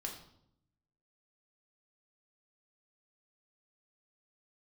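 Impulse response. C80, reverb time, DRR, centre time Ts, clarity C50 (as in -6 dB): 10.0 dB, 0.75 s, 0.5 dB, 24 ms, 7.0 dB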